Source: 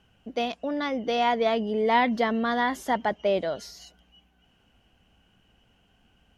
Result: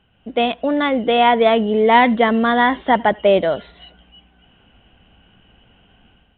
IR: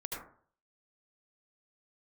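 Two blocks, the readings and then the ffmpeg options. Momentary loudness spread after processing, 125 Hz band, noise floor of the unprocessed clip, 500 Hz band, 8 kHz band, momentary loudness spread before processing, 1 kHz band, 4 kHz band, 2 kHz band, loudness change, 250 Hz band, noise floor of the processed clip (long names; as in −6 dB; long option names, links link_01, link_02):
8 LU, +10.0 dB, −65 dBFS, +10.0 dB, below −30 dB, 9 LU, +10.0 dB, +9.5 dB, +10.0 dB, +10.0 dB, +10.0 dB, −58 dBFS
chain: -filter_complex "[0:a]dynaudnorm=framelen=110:gausssize=5:maxgain=9dB,asplit=2[link_01][link_02];[1:a]atrim=start_sample=2205,atrim=end_sample=4410[link_03];[link_02][link_03]afir=irnorm=-1:irlink=0,volume=-23.5dB[link_04];[link_01][link_04]amix=inputs=2:normalize=0,volume=1.5dB" -ar 8000 -c:a pcm_mulaw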